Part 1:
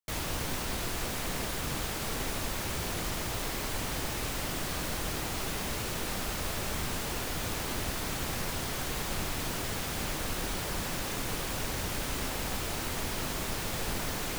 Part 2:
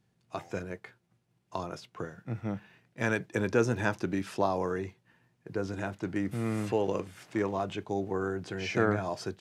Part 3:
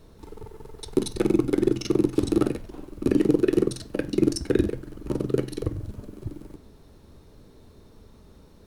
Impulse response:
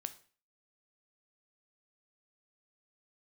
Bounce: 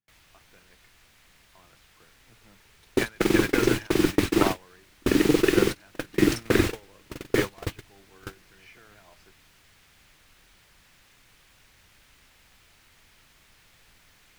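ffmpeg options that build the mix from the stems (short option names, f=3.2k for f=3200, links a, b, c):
-filter_complex "[0:a]acrossover=split=160|3000[a][b][c];[b]acompressor=threshold=-45dB:ratio=2.5[d];[a][d][c]amix=inputs=3:normalize=0,volume=1dB[e];[1:a]alimiter=limit=-22.5dB:level=0:latency=1:release=12,volume=0dB,asplit=2[f][g];[g]volume=-14.5dB[h];[2:a]dynaudnorm=f=260:g=3:m=8dB,adelay=2000,volume=-10dB,asplit=2[i][j];[j]volume=-4.5dB[k];[3:a]atrim=start_sample=2205[l];[h][k]amix=inputs=2:normalize=0[m];[m][l]afir=irnorm=-1:irlink=0[n];[e][f][i][n]amix=inputs=4:normalize=0,agate=range=-27dB:threshold=-23dB:ratio=16:detection=peak,equalizer=f=2k:w=0.65:g=11.5"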